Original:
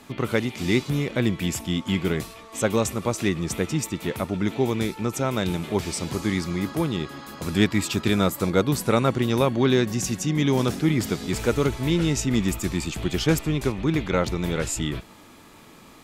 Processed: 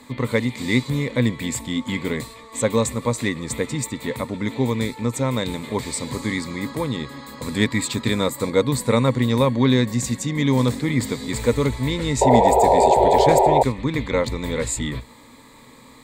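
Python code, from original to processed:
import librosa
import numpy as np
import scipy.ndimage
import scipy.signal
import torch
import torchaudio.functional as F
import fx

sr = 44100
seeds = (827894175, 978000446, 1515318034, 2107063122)

y = fx.ripple_eq(x, sr, per_octave=1.0, db=11)
y = fx.spec_paint(y, sr, seeds[0], shape='noise', start_s=12.21, length_s=1.42, low_hz=360.0, high_hz=980.0, level_db=-15.0)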